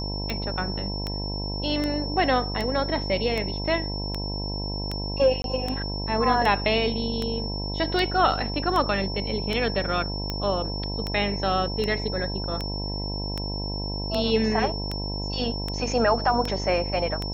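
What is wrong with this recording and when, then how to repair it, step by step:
buzz 50 Hz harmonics 20 -31 dBFS
tick 78 rpm -14 dBFS
tone 5400 Hz -33 dBFS
5.42–5.44 gap 22 ms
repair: de-click; notch 5400 Hz, Q 30; de-hum 50 Hz, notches 20; interpolate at 5.42, 22 ms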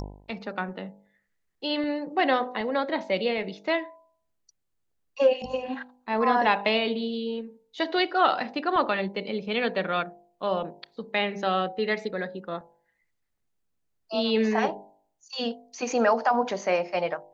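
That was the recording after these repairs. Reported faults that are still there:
none

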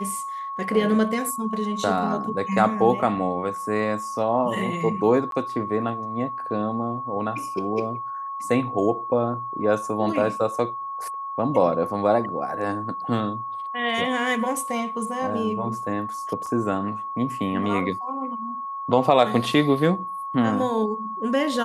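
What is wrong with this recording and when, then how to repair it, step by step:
tone 1100 Hz -29 dBFS
5.31–5.32 gap 12 ms
16.46 gap 4.6 ms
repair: notch 1100 Hz, Q 30; interpolate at 5.31, 12 ms; interpolate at 16.46, 4.6 ms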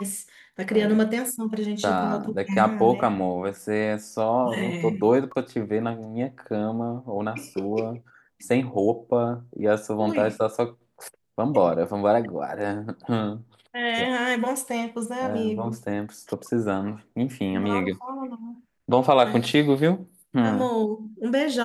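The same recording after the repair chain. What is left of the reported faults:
none

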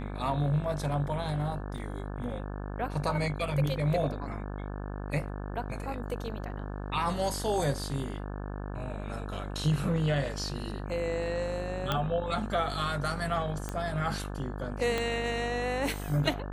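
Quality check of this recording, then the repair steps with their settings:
buzz 50 Hz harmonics 35 -37 dBFS
1.78 gap 2.5 ms
11.92 pop -14 dBFS
13.69 pop -20 dBFS
14.98 pop -17 dBFS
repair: de-click; de-hum 50 Hz, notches 35; interpolate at 1.78, 2.5 ms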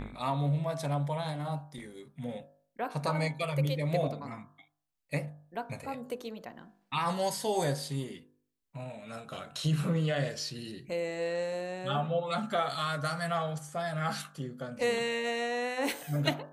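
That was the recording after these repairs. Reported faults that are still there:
14.98 pop

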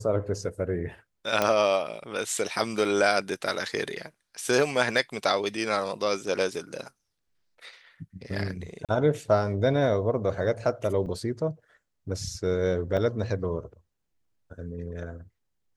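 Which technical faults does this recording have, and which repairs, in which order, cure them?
1.42 pop -9 dBFS
8.85–8.89 gap 37 ms
11.06 gap 3 ms
12.97 gap 3.3 ms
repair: de-click; interpolate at 8.85, 37 ms; interpolate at 11.06, 3 ms; interpolate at 12.97, 3.3 ms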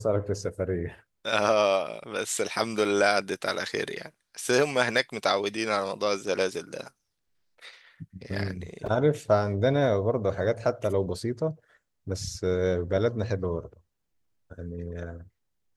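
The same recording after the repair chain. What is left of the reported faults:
none

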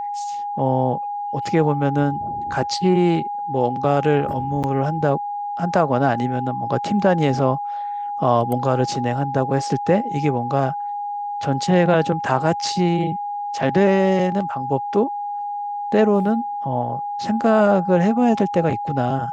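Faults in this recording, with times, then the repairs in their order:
tone 820 Hz -24 dBFS
4.63–4.64 gap 8.2 ms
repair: notch 820 Hz, Q 30; interpolate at 4.63, 8.2 ms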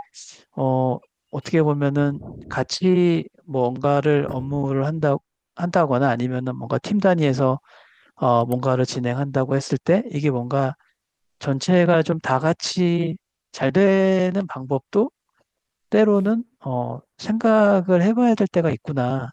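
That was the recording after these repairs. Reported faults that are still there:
none

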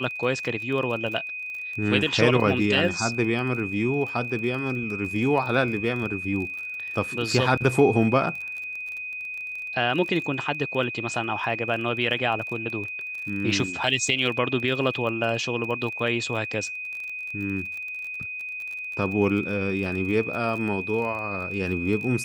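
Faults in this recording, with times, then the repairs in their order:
crackle 26/s -32 dBFS
tone 2500 Hz -31 dBFS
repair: de-click; notch 2500 Hz, Q 30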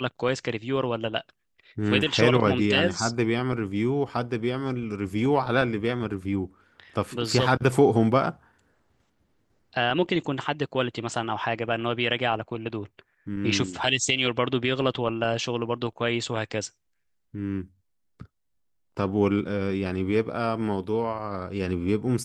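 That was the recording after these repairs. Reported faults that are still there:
none

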